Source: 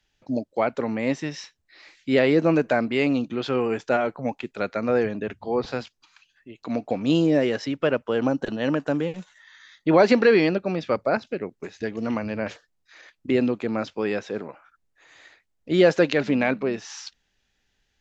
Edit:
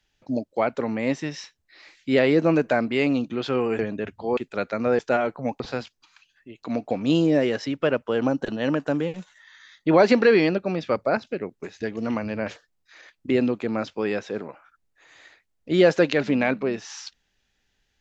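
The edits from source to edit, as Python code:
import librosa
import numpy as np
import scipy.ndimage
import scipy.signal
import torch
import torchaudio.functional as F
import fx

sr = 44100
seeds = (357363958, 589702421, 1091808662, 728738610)

y = fx.edit(x, sr, fx.swap(start_s=3.79, length_s=0.61, other_s=5.02, other_length_s=0.58), tone=tone)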